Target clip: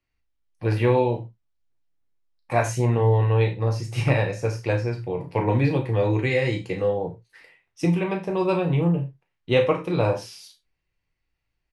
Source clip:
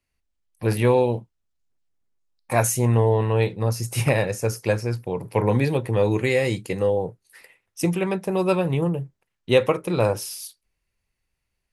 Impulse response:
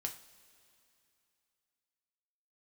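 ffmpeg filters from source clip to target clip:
-filter_complex "[0:a]lowpass=4.5k,asplit=2[a][b];[b]adelay=35,volume=-9dB[c];[a][c]amix=inputs=2:normalize=0[d];[1:a]atrim=start_sample=2205,atrim=end_sample=4410[e];[d][e]afir=irnorm=-1:irlink=0"

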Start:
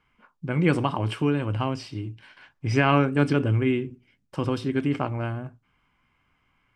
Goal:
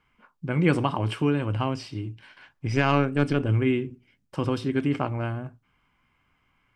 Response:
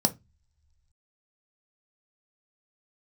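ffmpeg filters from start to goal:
-filter_complex "[0:a]asettb=1/sr,asplit=3[a][b][c];[a]atrim=end=2.674[d];[b]atrim=start=2.67:end=3.49,asetpts=PTS-STARTPTS,afade=t=in:d=0.004:c=qsin,afade=t=out:st=0.816:d=0.004:c=qsin,aeval=exprs='(tanh(3.55*val(0)+0.6)-tanh(0.6))/3.55':c=same[e];[c]atrim=start=3.486[f];[d][e]acrossfade=d=0.004:c1=hsin:c2=qsin[g];[g][f]acrossfade=d=0.004:c1=qsin:c2=hsin"

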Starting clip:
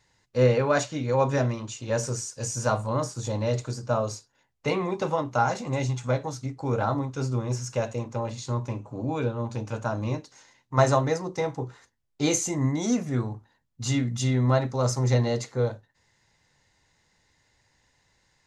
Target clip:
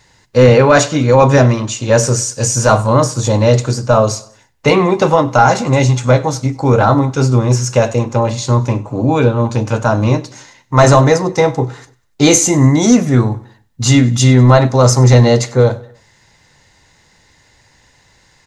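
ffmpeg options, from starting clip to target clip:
-af "aecho=1:1:97|194|291:0.0841|0.0362|0.0156,apsyclip=17.5dB,volume=-1.5dB"

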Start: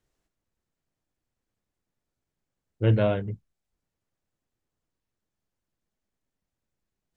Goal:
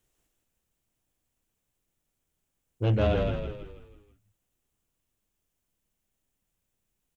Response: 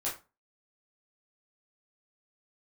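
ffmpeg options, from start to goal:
-filter_complex "[0:a]aexciter=amount=1.5:drive=5.5:freq=2.5k,asoftclip=type=tanh:threshold=-19dB,asplit=2[a][b];[b]asplit=6[c][d][e][f][g][h];[c]adelay=162,afreqshift=-35,volume=-4dB[i];[d]adelay=324,afreqshift=-70,volume=-10.7dB[j];[e]adelay=486,afreqshift=-105,volume=-17.5dB[k];[f]adelay=648,afreqshift=-140,volume=-24.2dB[l];[g]adelay=810,afreqshift=-175,volume=-31dB[m];[h]adelay=972,afreqshift=-210,volume=-37.7dB[n];[i][j][k][l][m][n]amix=inputs=6:normalize=0[o];[a][o]amix=inputs=2:normalize=0"

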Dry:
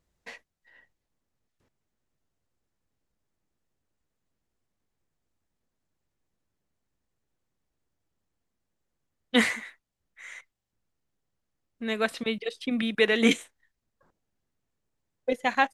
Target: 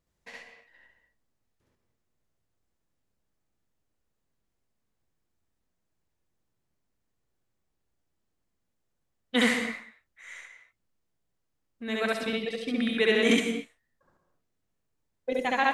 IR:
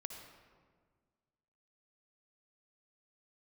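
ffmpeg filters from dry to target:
-filter_complex "[0:a]asplit=2[a][b];[1:a]atrim=start_sample=2205,afade=t=out:st=0.3:d=0.01,atrim=end_sample=13671,adelay=68[c];[b][c]afir=irnorm=-1:irlink=0,volume=5dB[d];[a][d]amix=inputs=2:normalize=0,volume=-4dB"

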